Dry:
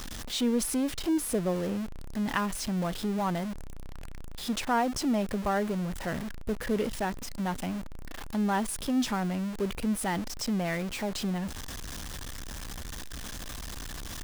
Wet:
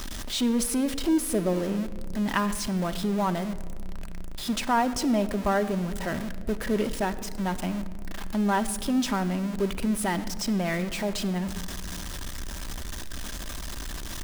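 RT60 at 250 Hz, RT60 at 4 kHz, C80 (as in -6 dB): 2.9 s, 0.90 s, 15.5 dB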